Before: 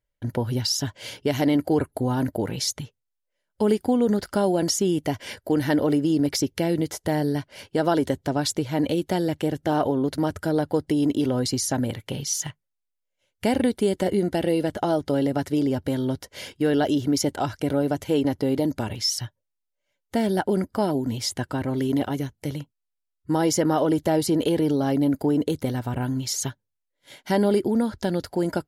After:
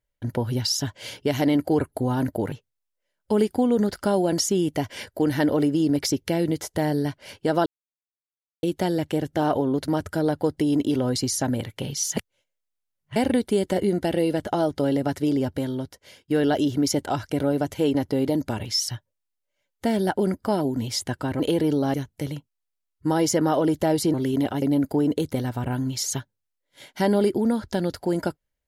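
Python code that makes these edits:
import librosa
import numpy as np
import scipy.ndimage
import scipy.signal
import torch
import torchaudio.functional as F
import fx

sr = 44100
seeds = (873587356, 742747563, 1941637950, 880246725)

y = fx.edit(x, sr, fx.cut(start_s=2.52, length_s=0.3),
    fx.silence(start_s=7.96, length_s=0.97),
    fx.reverse_span(start_s=12.47, length_s=0.99),
    fx.fade_out_to(start_s=15.76, length_s=0.82, floor_db=-21.5),
    fx.swap(start_s=21.7, length_s=0.48, other_s=24.38, other_length_s=0.54), tone=tone)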